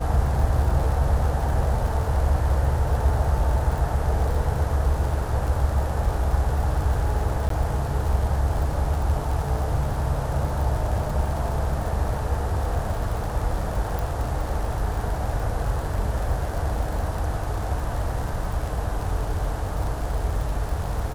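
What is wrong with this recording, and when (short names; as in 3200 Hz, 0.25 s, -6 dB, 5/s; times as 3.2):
crackle 83/s -30 dBFS
7.49–7.5 gap 13 ms
13.99 pop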